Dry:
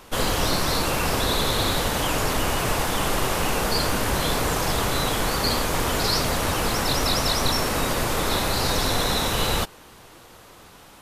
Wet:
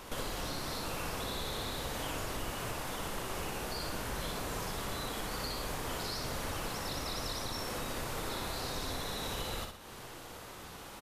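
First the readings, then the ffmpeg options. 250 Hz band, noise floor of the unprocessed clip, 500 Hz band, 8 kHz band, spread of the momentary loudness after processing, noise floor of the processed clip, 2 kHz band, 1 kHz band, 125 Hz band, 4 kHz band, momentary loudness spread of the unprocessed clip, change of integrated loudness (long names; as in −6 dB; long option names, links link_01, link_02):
−14.5 dB, −48 dBFS, −14.5 dB, −14.5 dB, 6 LU, −48 dBFS, −14.5 dB, −14.5 dB, −15.0 dB, −15.0 dB, 2 LU, −15.0 dB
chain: -filter_complex "[0:a]acompressor=threshold=-35dB:ratio=8,asplit=2[link_01][link_02];[link_02]aecho=0:1:61|122|183|244|305:0.562|0.242|0.104|0.0447|0.0192[link_03];[link_01][link_03]amix=inputs=2:normalize=0,volume=-1.5dB"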